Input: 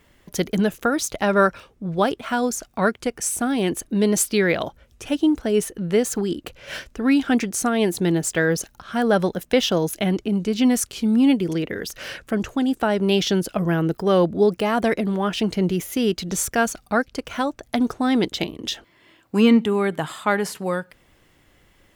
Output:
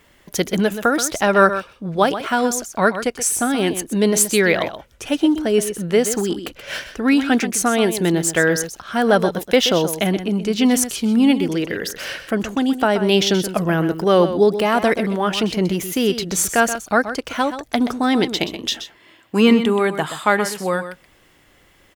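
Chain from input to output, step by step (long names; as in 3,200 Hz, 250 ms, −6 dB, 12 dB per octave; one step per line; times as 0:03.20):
low-shelf EQ 290 Hz −6 dB
single-tap delay 127 ms −11 dB
level +5 dB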